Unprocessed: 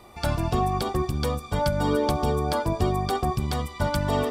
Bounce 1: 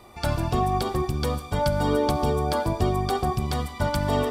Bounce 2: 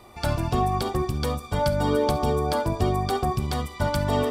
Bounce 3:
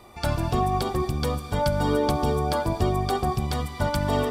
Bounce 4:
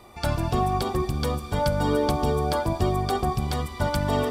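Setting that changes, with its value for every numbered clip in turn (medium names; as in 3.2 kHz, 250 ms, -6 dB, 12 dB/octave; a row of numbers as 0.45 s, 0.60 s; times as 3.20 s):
gated-style reverb, gate: 200 ms, 90 ms, 300 ms, 500 ms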